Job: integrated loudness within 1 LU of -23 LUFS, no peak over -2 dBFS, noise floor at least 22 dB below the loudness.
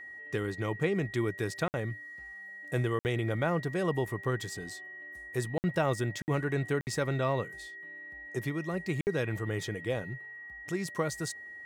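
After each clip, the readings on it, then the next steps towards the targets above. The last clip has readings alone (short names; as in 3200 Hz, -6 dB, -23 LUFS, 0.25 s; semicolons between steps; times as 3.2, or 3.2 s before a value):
dropouts 6; longest dropout 59 ms; steady tone 1900 Hz; tone level -43 dBFS; loudness -33.0 LUFS; peak -15.5 dBFS; loudness target -23.0 LUFS
-> interpolate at 1.68/2.99/5.58/6.22/6.81/9.01, 59 ms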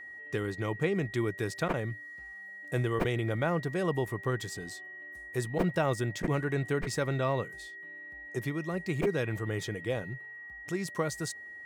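dropouts 0; steady tone 1900 Hz; tone level -43 dBFS
-> notch 1900 Hz, Q 30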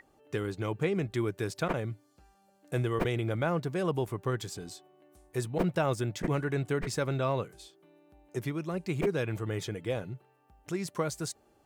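steady tone none; loudness -33.0 LUFS; peak -15.5 dBFS; loudness target -23.0 LUFS
-> gain +10 dB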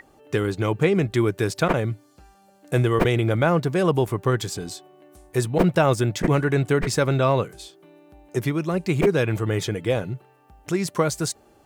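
loudness -23.0 LUFS; peak -5.5 dBFS; noise floor -56 dBFS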